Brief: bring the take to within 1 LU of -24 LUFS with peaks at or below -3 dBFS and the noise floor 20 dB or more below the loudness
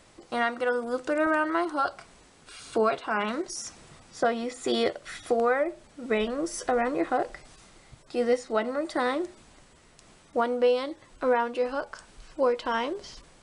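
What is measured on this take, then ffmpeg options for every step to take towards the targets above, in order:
loudness -28.0 LUFS; peak level -13.0 dBFS; loudness target -24.0 LUFS
-> -af "volume=1.58"

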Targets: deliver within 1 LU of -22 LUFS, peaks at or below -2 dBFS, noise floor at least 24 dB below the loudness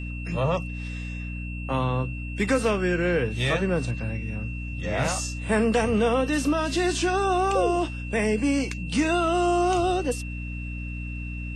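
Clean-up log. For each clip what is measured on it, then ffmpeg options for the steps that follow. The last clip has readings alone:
hum 60 Hz; highest harmonic 300 Hz; hum level -30 dBFS; steady tone 2.7 kHz; tone level -39 dBFS; loudness -25.5 LUFS; peak level -11.0 dBFS; loudness target -22.0 LUFS
-> -af "bandreject=f=60:t=h:w=6,bandreject=f=120:t=h:w=6,bandreject=f=180:t=h:w=6,bandreject=f=240:t=h:w=6,bandreject=f=300:t=h:w=6"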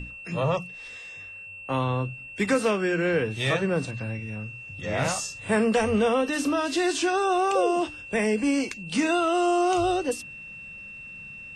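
hum not found; steady tone 2.7 kHz; tone level -39 dBFS
-> -af "bandreject=f=2700:w=30"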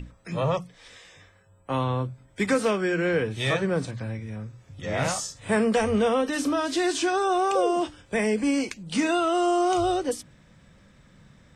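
steady tone not found; loudness -25.5 LUFS; peak level -12.5 dBFS; loudness target -22.0 LUFS
-> -af "volume=1.5"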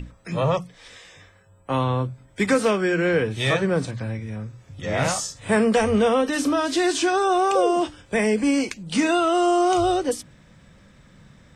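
loudness -22.0 LUFS; peak level -9.0 dBFS; noise floor -54 dBFS

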